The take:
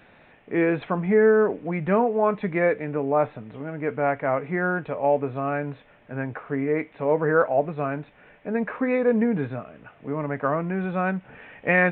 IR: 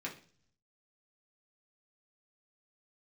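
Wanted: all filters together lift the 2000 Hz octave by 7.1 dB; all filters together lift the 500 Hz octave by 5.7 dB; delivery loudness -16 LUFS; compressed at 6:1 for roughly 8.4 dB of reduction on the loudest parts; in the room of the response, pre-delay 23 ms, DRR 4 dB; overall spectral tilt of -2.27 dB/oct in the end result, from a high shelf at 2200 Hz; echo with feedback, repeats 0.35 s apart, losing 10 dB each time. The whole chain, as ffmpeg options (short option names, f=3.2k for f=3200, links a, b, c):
-filter_complex "[0:a]equalizer=f=500:t=o:g=6,equalizer=f=2k:t=o:g=4.5,highshelf=f=2.2k:g=8,acompressor=threshold=-18dB:ratio=6,aecho=1:1:350|700|1050|1400:0.316|0.101|0.0324|0.0104,asplit=2[a][b];[1:a]atrim=start_sample=2205,adelay=23[c];[b][c]afir=irnorm=-1:irlink=0,volume=-5dB[d];[a][d]amix=inputs=2:normalize=0,volume=6.5dB"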